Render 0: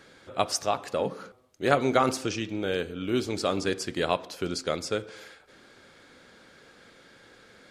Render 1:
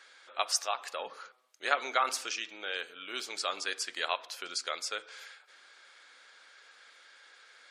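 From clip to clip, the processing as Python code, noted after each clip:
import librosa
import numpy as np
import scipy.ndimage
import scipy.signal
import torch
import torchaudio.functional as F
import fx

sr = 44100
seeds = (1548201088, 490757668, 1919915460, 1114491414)

y = scipy.signal.sosfilt(scipy.signal.butter(2, 1100.0, 'highpass', fs=sr, output='sos'), x)
y = fx.spec_gate(y, sr, threshold_db=-30, keep='strong')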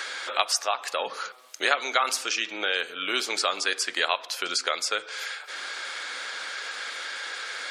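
y = fx.band_squash(x, sr, depth_pct=70)
y = F.gain(torch.from_numpy(y), 8.5).numpy()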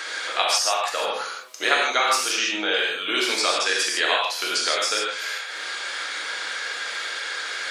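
y = fx.rev_gated(x, sr, seeds[0], gate_ms=180, shape='flat', drr_db=-3.0)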